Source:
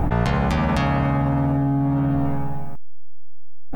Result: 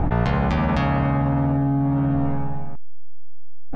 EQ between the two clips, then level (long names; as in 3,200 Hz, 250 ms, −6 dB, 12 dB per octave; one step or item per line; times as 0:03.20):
high-frequency loss of the air 120 metres
0.0 dB